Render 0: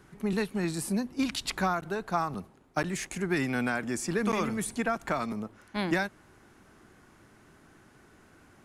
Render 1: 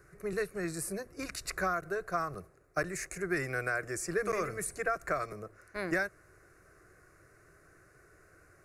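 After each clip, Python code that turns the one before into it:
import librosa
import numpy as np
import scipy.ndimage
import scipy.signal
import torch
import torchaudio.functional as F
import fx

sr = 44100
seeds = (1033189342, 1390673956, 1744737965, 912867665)

y = fx.fixed_phaser(x, sr, hz=880.0, stages=6)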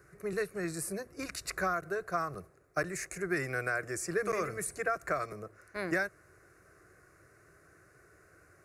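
y = scipy.signal.sosfilt(scipy.signal.butter(2, 55.0, 'highpass', fs=sr, output='sos'), x)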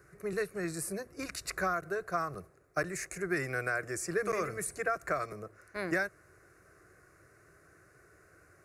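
y = x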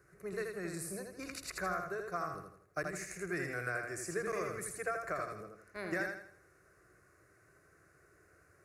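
y = fx.echo_feedback(x, sr, ms=81, feedback_pct=39, wet_db=-4.5)
y = y * 10.0 ** (-6.0 / 20.0)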